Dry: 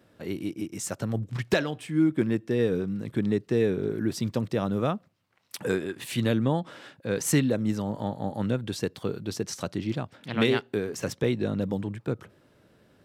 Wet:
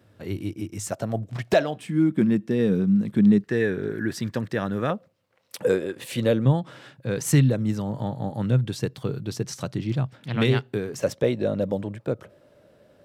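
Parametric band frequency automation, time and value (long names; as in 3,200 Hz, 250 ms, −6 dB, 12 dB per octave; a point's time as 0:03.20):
parametric band +13 dB 0.43 octaves
100 Hz
from 0:00.92 660 Hz
from 0:01.76 200 Hz
from 0:03.44 1,700 Hz
from 0:04.90 520 Hz
from 0:06.45 130 Hz
from 0:10.99 580 Hz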